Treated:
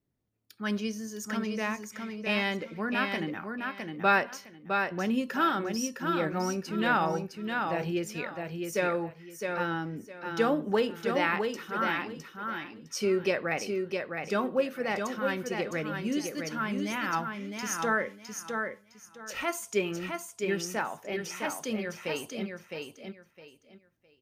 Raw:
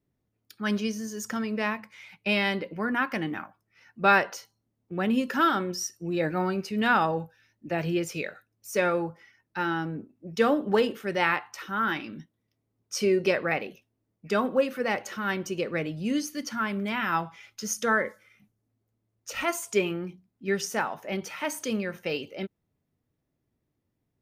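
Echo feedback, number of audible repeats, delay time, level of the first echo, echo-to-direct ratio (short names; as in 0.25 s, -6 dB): 23%, 3, 0.66 s, -5.0 dB, -5.0 dB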